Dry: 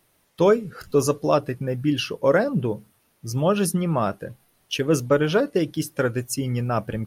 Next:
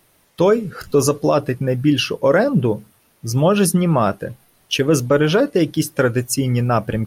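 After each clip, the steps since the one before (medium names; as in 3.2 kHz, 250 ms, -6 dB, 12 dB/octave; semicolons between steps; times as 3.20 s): peak limiter -13 dBFS, peak gain reduction 7 dB; trim +7 dB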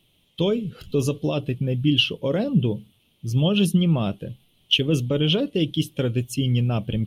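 FFT filter 190 Hz 0 dB, 1.7 kHz -18 dB, 3.2 kHz +9 dB, 4.8 kHz -11 dB; trim -2 dB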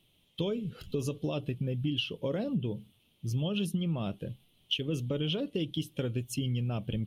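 compression 4:1, threshold -24 dBFS, peak gain reduction 9.5 dB; trim -5 dB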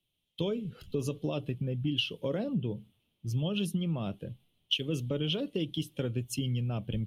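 three bands expanded up and down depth 40%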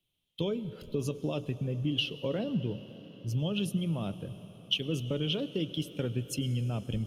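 reverberation RT60 5.6 s, pre-delay 87 ms, DRR 13.5 dB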